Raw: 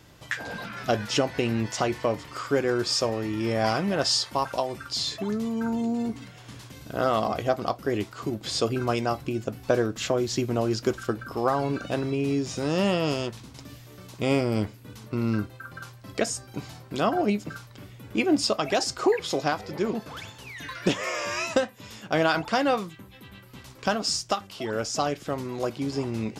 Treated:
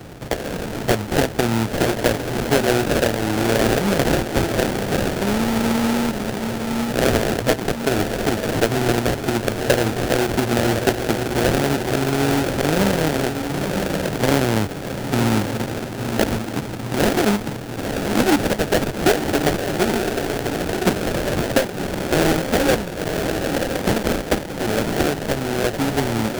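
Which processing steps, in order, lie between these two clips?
diffused feedback echo 1.006 s, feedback 47%, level -6.5 dB; sample-rate reducer 1100 Hz, jitter 20%; three-band squash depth 40%; gain +6 dB

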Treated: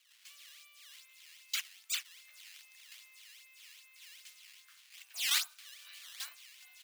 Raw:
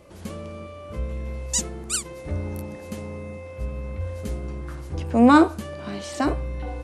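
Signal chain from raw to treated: decimation with a swept rate 11×, swing 160% 2.5 Hz; ladder high-pass 2100 Hz, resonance 25%; gain -2 dB

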